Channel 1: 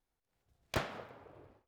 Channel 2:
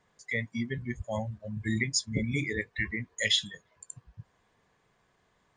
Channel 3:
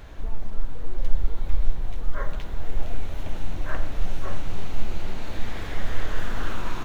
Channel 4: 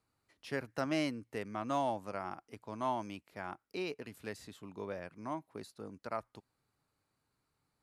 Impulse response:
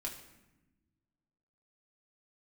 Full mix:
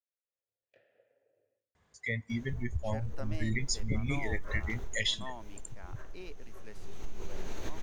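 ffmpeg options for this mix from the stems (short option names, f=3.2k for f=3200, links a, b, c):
-filter_complex "[0:a]equalizer=f=110:t=o:w=0.38:g=14,alimiter=level_in=8dB:limit=-24dB:level=0:latency=1:release=369,volume=-8dB,asplit=3[a][b][c];[a]bandpass=f=530:t=q:w=8,volume=0dB[d];[b]bandpass=f=1.84k:t=q:w=8,volume=-6dB[e];[c]bandpass=f=2.48k:t=q:w=8,volume=-9dB[f];[d][e][f]amix=inputs=3:normalize=0,volume=-11.5dB,asplit=2[g][h];[h]volume=-5.5dB[i];[1:a]equalizer=f=72:t=o:w=0.72:g=15,adelay=1750,volume=-3dB,asplit=2[j][k];[k]volume=-24dB[l];[2:a]equalizer=f=400:t=o:w=0.33:g=10,equalizer=f=6.3k:t=o:w=0.33:g=12,equalizer=f=16k:t=o:w=0.33:g=11,acompressor=threshold=-24dB:ratio=5,adelay=2300,volume=7.5dB,afade=t=in:st=2.98:d=0.43:silence=0.446684,afade=t=out:st=4.42:d=0.79:silence=0.316228,afade=t=in:st=6.69:d=0.54:silence=0.266073[m];[3:a]adelay=2400,volume=-9.5dB[n];[4:a]atrim=start_sample=2205[o];[i][l]amix=inputs=2:normalize=0[p];[p][o]afir=irnorm=-1:irlink=0[q];[g][j][m][n][q]amix=inputs=5:normalize=0,acompressor=threshold=-28dB:ratio=2"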